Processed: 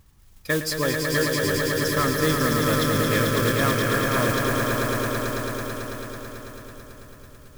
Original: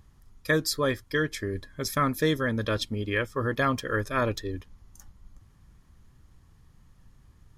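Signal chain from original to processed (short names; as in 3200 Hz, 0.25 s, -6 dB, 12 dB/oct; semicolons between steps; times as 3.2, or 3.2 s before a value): swelling echo 0.11 s, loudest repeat 5, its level -5 dB; modulation noise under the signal 12 dB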